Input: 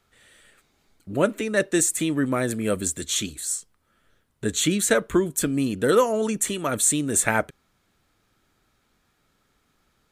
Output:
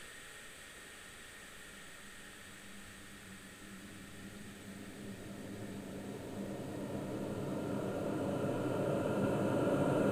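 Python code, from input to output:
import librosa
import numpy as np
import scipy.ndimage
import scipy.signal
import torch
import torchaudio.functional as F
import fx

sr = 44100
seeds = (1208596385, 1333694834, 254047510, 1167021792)

y = fx.paulstretch(x, sr, seeds[0], factor=43.0, window_s=1.0, from_s=0.62)
y = fx.hum_notches(y, sr, base_hz=50, count=2)
y = y * librosa.db_to_amplitude(7.5)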